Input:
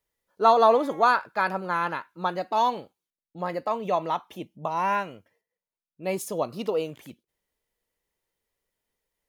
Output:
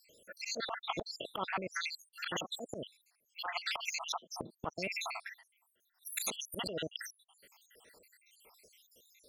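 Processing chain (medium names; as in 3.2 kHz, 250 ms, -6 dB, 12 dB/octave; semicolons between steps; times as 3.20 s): random holes in the spectrogram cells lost 83%; high-pass 370 Hz 6 dB/octave; low-pass that closes with the level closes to 1.3 kHz, closed at -30 dBFS; slow attack 162 ms; spectrum-flattening compressor 4:1; trim +1 dB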